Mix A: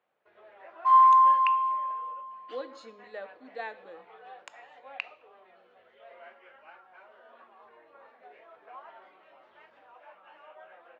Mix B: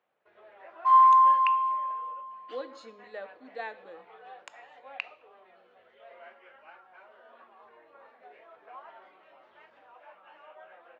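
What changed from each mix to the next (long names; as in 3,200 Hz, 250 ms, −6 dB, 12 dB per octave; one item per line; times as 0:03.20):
nothing changed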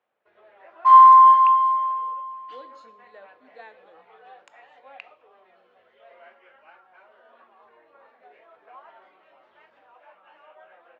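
speech −7.5 dB
second sound +8.0 dB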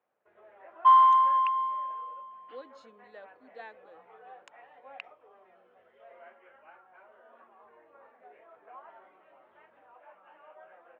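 first sound: add high-frequency loss of the air 490 metres
reverb: off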